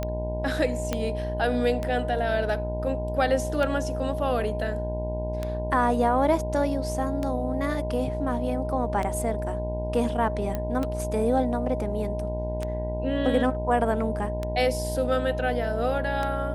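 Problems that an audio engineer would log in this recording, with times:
mains buzz 60 Hz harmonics 17 −31 dBFS
scratch tick 33 1/3 rpm −16 dBFS
whistle 620 Hz −31 dBFS
0:00.93: click −12 dBFS
0:10.55: click −16 dBFS

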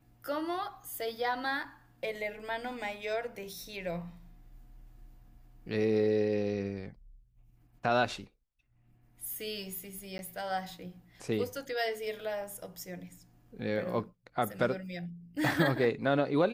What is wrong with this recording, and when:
0:10.18–0:10.19: drop-out 11 ms

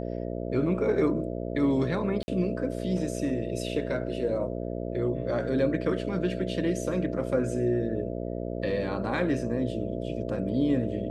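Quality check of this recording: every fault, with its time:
mains buzz 60 Hz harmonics 11 −33 dBFS
0:02.23–0:02.28: drop-out 50 ms

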